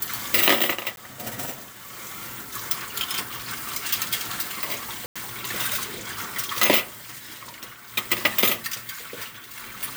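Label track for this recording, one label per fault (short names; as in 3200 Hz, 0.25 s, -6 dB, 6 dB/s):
0.960000	0.970000	gap 12 ms
5.060000	5.160000	gap 96 ms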